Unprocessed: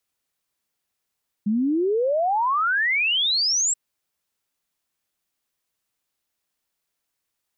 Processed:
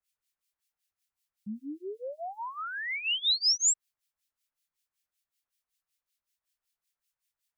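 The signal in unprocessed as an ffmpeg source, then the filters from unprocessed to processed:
-f lavfi -i "aevalsrc='0.119*clip(min(t,2.28-t)/0.01,0,1)*sin(2*PI*200*2.28/log(7800/200)*(exp(log(7800/200)*t/2.28)-1))':duration=2.28:sample_rate=44100"
-filter_complex "[0:a]equalizer=frequency=290:width=0.41:gain=-14,acrossover=split=1700[link_01][link_02];[link_01]aeval=exprs='val(0)*(1-1/2+1/2*cos(2*PI*5.3*n/s))':channel_layout=same[link_03];[link_02]aeval=exprs='val(0)*(1-1/2-1/2*cos(2*PI*5.3*n/s))':channel_layout=same[link_04];[link_03][link_04]amix=inputs=2:normalize=0,acrossover=split=310|3000[link_05][link_06][link_07];[link_06]acompressor=threshold=-36dB:ratio=6[link_08];[link_05][link_08][link_07]amix=inputs=3:normalize=0"

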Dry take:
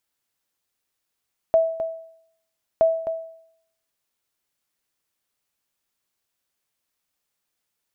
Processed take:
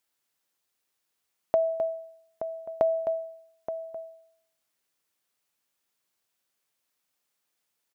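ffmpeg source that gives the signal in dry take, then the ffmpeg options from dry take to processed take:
-f lavfi -i "aevalsrc='0.299*(sin(2*PI*653*mod(t,1.27))*exp(-6.91*mod(t,1.27)/0.68)+0.316*sin(2*PI*653*max(mod(t,1.27)-0.26,0))*exp(-6.91*max(mod(t,1.27)-0.26,0)/0.68))':duration=2.54:sample_rate=44100"
-filter_complex "[0:a]acompressor=threshold=-20dB:ratio=6,lowshelf=frequency=93:gain=-11.5,asplit=2[link_01][link_02];[link_02]adelay=874.6,volume=-10dB,highshelf=frequency=4000:gain=-19.7[link_03];[link_01][link_03]amix=inputs=2:normalize=0"

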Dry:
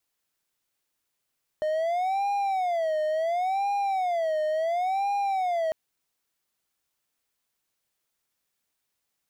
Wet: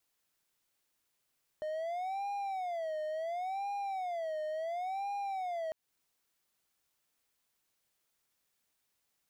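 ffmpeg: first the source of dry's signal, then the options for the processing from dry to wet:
-f lavfi -i "aevalsrc='0.0841*(1-4*abs(mod((711.5*t-96.5/(2*PI*0.71)*sin(2*PI*0.71*t))+0.25,1)-0.5))':duration=4.1:sample_rate=44100"
-af "alimiter=level_in=8dB:limit=-24dB:level=0:latency=1:release=214,volume=-8dB"

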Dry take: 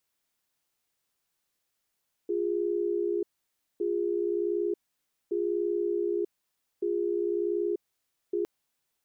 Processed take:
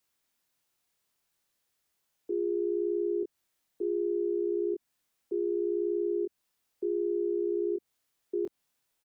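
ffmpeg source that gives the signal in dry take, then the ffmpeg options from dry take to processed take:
-f lavfi -i "aevalsrc='0.0376*(sin(2*PI*349*t)+sin(2*PI*410*t))*clip(min(mod(t,1.51),0.94-mod(t,1.51))/0.005,0,1)':duration=6.16:sample_rate=44100"
-filter_complex "[0:a]acrossover=split=330|360[link_01][link_02][link_03];[link_03]alimiter=level_in=15dB:limit=-24dB:level=0:latency=1:release=149,volume=-15dB[link_04];[link_01][link_02][link_04]amix=inputs=3:normalize=0,asplit=2[link_05][link_06];[link_06]adelay=25,volume=-5dB[link_07];[link_05][link_07]amix=inputs=2:normalize=0"

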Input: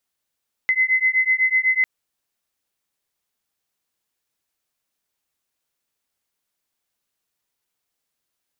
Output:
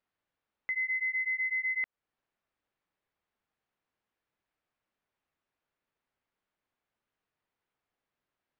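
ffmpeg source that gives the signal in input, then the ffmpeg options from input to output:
-f lavfi -i "aevalsrc='0.112*(sin(2*PI*2040*t)+sin(2*PI*2048*t))':duration=1.15:sample_rate=44100"
-af "lowpass=2100,alimiter=level_in=3dB:limit=-24dB:level=0:latency=1:release=291,volume=-3dB"

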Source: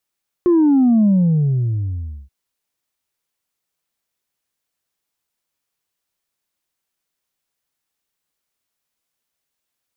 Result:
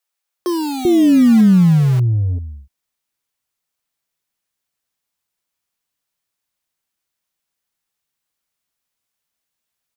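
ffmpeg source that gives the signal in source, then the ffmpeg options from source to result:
-f lavfi -i "aevalsrc='0.299*clip((1.83-t)/1.23,0,1)*tanh(1.12*sin(2*PI*360*1.83/log(65/360)*(exp(log(65/360)*t/1.83)-1)))/tanh(1.12)':duration=1.83:sample_rate=44100"
-filter_complex "[0:a]asplit=2[link_01][link_02];[link_02]acrusher=bits=3:mix=0:aa=0.000001,volume=-4dB[link_03];[link_01][link_03]amix=inputs=2:normalize=0,acrossover=split=410[link_04][link_05];[link_04]adelay=390[link_06];[link_06][link_05]amix=inputs=2:normalize=0"

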